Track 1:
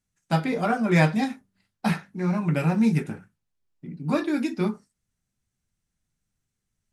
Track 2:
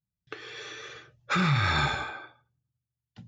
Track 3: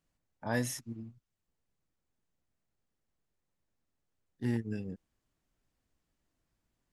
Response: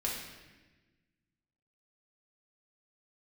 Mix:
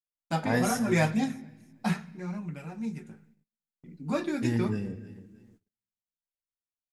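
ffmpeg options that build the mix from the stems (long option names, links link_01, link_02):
-filter_complex "[0:a]equalizer=frequency=6900:width=3.1:gain=7.5,flanger=delay=0.3:depth=5.3:regen=54:speed=0.82:shape=sinusoidal,volume=10dB,afade=type=out:start_time=1.93:duration=0.58:silence=0.266073,afade=type=in:start_time=3.55:duration=0.65:silence=0.251189,asplit=2[link_01][link_02];[link_02]volume=-18.5dB[link_03];[2:a]volume=2dB,asplit=3[link_04][link_05][link_06];[link_05]volume=-9.5dB[link_07];[link_06]volume=-14dB[link_08];[3:a]atrim=start_sample=2205[link_09];[link_03][link_07]amix=inputs=2:normalize=0[link_10];[link_10][link_09]afir=irnorm=-1:irlink=0[link_11];[link_08]aecho=0:1:312|624|936|1248|1560:1|0.32|0.102|0.0328|0.0105[link_12];[link_01][link_04][link_11][link_12]amix=inputs=4:normalize=0,agate=range=-37dB:threshold=-59dB:ratio=16:detection=peak"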